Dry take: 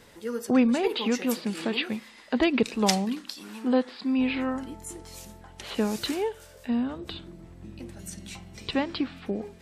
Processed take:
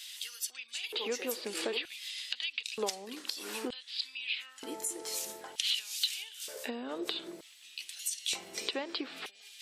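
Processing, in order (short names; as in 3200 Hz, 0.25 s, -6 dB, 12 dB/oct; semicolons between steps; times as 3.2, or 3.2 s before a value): high shelf 2100 Hz +12 dB; compressor 20:1, threshold -32 dBFS, peak gain reduction 24.5 dB; LFO high-pass square 0.54 Hz 420–3100 Hz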